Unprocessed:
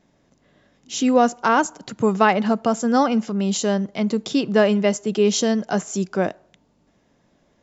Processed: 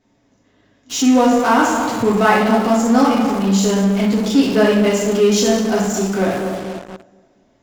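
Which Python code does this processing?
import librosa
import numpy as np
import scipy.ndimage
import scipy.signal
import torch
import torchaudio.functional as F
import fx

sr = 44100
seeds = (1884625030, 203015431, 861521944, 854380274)

p1 = fx.echo_bbd(x, sr, ms=241, stages=2048, feedback_pct=35, wet_db=-9)
p2 = fx.rev_double_slope(p1, sr, seeds[0], early_s=0.74, late_s=2.1, knee_db=-18, drr_db=-6.0)
p3 = fx.fuzz(p2, sr, gain_db=41.0, gate_db=-34.0)
p4 = p2 + (p3 * librosa.db_to_amplitude(-8.0))
y = p4 * librosa.db_to_amplitude(-5.0)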